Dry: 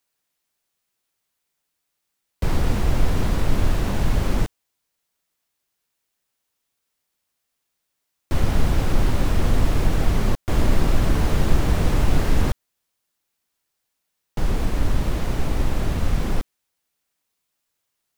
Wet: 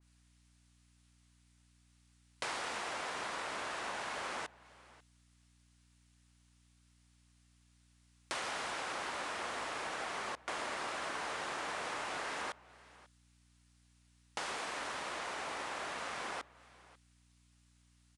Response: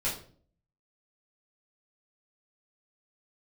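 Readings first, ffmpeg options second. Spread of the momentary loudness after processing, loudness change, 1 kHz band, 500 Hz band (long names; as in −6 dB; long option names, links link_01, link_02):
4 LU, −15.5 dB, −6.5 dB, −14.5 dB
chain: -filter_complex "[0:a]highpass=940,acompressor=threshold=-45dB:ratio=3,aeval=exprs='val(0)+0.000224*(sin(2*PI*60*n/s)+sin(2*PI*2*60*n/s)/2+sin(2*PI*3*60*n/s)/3+sin(2*PI*4*60*n/s)/4+sin(2*PI*5*60*n/s)/5)':channel_layout=same,asplit=2[link_01][link_02];[link_02]adelay=542.3,volume=-20dB,highshelf=frequency=4000:gain=-12.2[link_03];[link_01][link_03]amix=inputs=2:normalize=0,aresample=22050,aresample=44100,adynamicequalizer=threshold=0.00112:dfrequency=2400:dqfactor=0.7:tfrequency=2400:tqfactor=0.7:attack=5:release=100:ratio=0.375:range=3:mode=cutabove:tftype=highshelf,volume=6dB"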